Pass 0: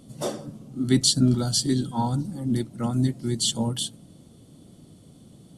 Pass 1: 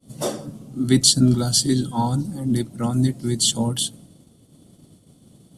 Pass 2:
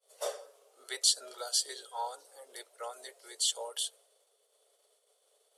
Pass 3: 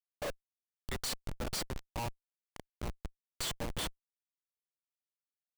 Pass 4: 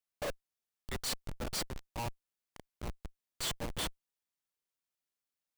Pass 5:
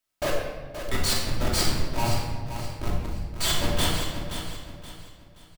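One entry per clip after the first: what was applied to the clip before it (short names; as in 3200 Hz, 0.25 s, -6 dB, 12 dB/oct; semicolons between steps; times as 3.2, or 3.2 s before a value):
expander -44 dBFS; high shelf 9400 Hz +7 dB; gain +3.5 dB
rippled Chebyshev high-pass 420 Hz, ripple 3 dB; gain -8 dB
frequency-shifting echo 0.195 s, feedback 62%, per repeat +41 Hz, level -19 dB; Schmitt trigger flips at -33 dBFS; gain +3.5 dB
limiter -37 dBFS, peak gain reduction 7 dB; gain +3 dB
feedback echo 0.525 s, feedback 33%, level -9.5 dB; shoebox room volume 1100 m³, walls mixed, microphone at 2.8 m; gain +7 dB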